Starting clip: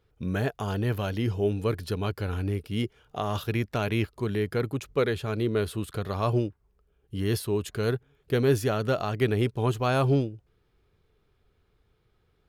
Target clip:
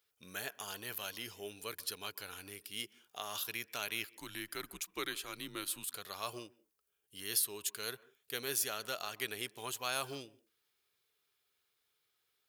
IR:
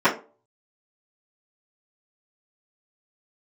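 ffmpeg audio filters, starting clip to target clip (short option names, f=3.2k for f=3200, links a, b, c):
-filter_complex "[0:a]aderivative,asettb=1/sr,asplit=3[a][b][c];[a]atrim=end=4.094[d];[b]atrim=start=4.09:end=5.84,asetpts=PTS-STARTPTS,afade=t=in:d=0.004:c=qsin,afade=t=out:st=1.746:d=0.004:c=qsin,afreqshift=-87[e];[c]atrim=start=5.836[f];[d][e]acrossfade=d=0.004:c1=hsin:c2=qsin[g];[g][f]acrossfade=d=0.004:c1=qsin:c2=hsin,asplit=2[h][i];[1:a]atrim=start_sample=2205,afade=t=out:st=0.16:d=0.01,atrim=end_sample=7497,adelay=129[j];[i][j]afir=irnorm=-1:irlink=0,volume=-41.5dB[k];[h][k]amix=inputs=2:normalize=0,volume=5dB"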